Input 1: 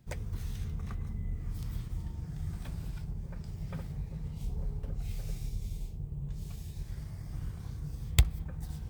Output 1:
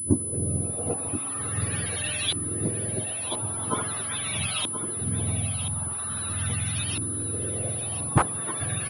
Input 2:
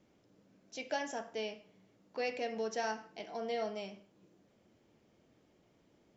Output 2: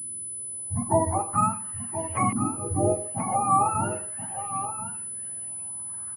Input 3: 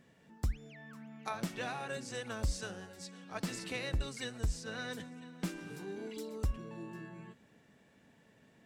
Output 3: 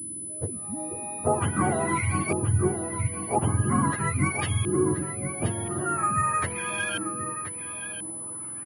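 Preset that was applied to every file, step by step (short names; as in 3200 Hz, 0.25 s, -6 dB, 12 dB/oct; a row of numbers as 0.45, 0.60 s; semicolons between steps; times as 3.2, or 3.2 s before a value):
spectrum mirrored in octaves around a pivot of 740 Hz; in parallel at -3 dB: compressor, threshold -47 dBFS; on the sum: wrapped overs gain 23 dB; LFO low-pass saw up 0.43 Hz 300–3100 Hz; on a send: echo 1.028 s -10.5 dB; on the sum: pulse-width modulation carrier 10000 Hz; match loudness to -27 LUFS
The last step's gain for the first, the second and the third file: +17.5, +10.5, +12.0 dB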